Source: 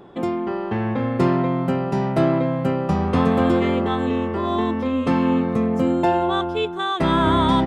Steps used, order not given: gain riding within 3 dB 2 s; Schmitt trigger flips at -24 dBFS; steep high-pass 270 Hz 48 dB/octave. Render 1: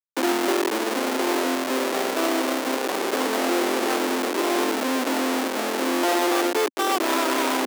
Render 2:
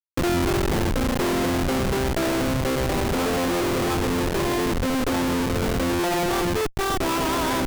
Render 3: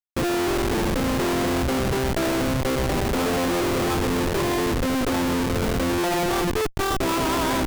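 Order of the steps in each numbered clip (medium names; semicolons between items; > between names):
Schmitt trigger > gain riding > steep high-pass; steep high-pass > Schmitt trigger > gain riding; gain riding > steep high-pass > Schmitt trigger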